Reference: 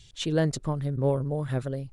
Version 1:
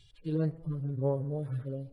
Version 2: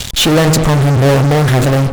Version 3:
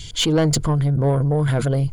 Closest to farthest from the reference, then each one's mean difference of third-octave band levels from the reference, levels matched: 3, 1, 2; 3.5 dB, 5.5 dB, 12.5 dB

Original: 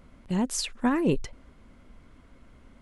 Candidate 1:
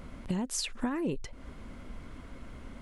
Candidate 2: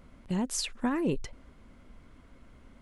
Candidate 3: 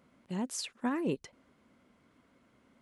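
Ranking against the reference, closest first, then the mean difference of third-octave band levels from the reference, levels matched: 3, 2, 1; 1.0 dB, 2.0 dB, 9.0 dB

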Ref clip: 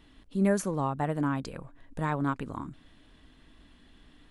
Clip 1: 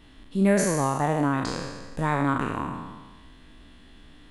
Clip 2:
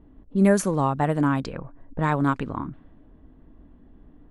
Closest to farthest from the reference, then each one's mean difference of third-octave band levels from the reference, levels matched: 2, 1; 2.5 dB, 5.0 dB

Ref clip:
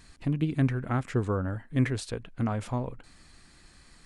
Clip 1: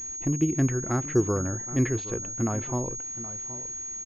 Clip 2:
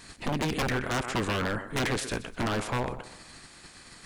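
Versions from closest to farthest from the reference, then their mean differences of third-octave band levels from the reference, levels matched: 1, 2; 6.5 dB, 11.5 dB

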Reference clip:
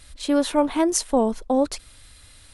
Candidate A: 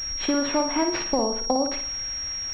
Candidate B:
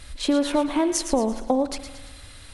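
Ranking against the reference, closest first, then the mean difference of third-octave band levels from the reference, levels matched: B, A; 6.0 dB, 10.5 dB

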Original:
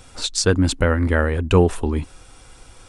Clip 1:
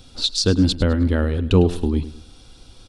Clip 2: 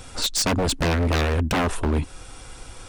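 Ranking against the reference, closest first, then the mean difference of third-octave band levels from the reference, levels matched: 1, 2; 4.5 dB, 8.5 dB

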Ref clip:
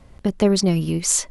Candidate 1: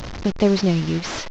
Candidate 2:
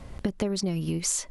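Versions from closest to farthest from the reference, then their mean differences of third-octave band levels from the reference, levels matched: 2, 1; 3.5 dB, 9.0 dB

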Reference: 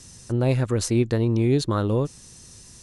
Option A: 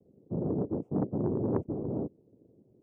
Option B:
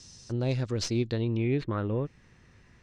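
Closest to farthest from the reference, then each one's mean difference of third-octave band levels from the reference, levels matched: B, A; 3.5 dB, 11.0 dB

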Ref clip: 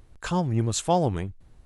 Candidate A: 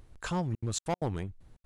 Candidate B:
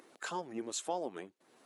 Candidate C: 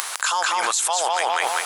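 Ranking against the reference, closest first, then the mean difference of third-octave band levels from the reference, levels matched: A, B, C; 4.5 dB, 7.0 dB, 19.5 dB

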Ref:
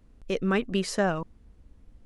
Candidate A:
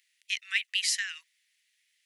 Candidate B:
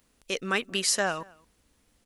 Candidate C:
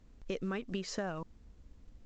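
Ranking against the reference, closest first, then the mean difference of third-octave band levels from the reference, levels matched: C, B, A; 3.0 dB, 6.0 dB, 17.5 dB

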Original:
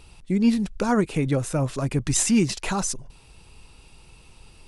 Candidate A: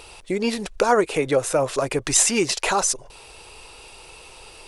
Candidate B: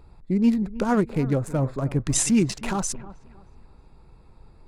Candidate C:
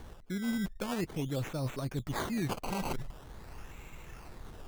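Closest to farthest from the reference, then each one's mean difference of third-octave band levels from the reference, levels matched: B, A, C; 4.5 dB, 6.5 dB, 11.0 dB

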